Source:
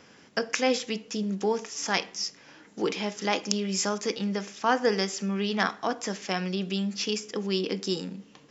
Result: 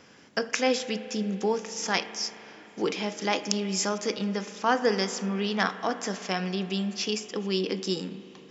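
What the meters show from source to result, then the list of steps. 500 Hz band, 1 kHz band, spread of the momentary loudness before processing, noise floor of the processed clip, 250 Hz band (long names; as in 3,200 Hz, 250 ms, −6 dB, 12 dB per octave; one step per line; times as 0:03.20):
+0.5 dB, +0.5 dB, 7 LU, −52 dBFS, 0.0 dB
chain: spring reverb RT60 3.6 s, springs 37 ms, chirp 75 ms, DRR 12 dB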